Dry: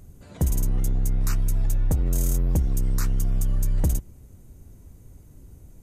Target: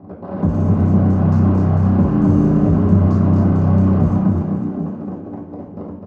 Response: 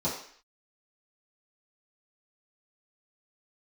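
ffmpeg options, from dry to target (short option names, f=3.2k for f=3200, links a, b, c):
-filter_complex "[0:a]highpass=57,equalizer=f=350:w=5.1:g=-7,acrossover=split=380|3500[a][b][c];[b]acompressor=threshold=-53dB:ratio=6[d];[a][d][c]amix=inputs=3:normalize=0,acrusher=bits=8:dc=4:mix=0:aa=0.000001,adynamicsmooth=sensitivity=3.5:basefreq=800,asplit=2[e][f];[f]highpass=f=720:p=1,volume=28dB,asoftclip=type=tanh:threshold=-14.5dB[g];[e][g]amix=inputs=2:normalize=0,lowpass=f=1.4k:p=1,volume=-6dB,asplit=9[h][i][j][k][l][m][n][o][p];[i]adelay=244,afreqshift=34,volume=-3.5dB[q];[j]adelay=488,afreqshift=68,volume=-8.4dB[r];[k]adelay=732,afreqshift=102,volume=-13.3dB[s];[l]adelay=976,afreqshift=136,volume=-18.1dB[t];[m]adelay=1220,afreqshift=170,volume=-23dB[u];[n]adelay=1464,afreqshift=204,volume=-27.9dB[v];[o]adelay=1708,afreqshift=238,volume=-32.8dB[w];[p]adelay=1952,afreqshift=272,volume=-37.7dB[x];[h][q][r][s][t][u][v][w][x]amix=inputs=9:normalize=0[y];[1:a]atrim=start_sample=2205,asetrate=52920,aresample=44100[z];[y][z]afir=irnorm=-1:irlink=0,asetrate=42336,aresample=44100,volume=-3dB"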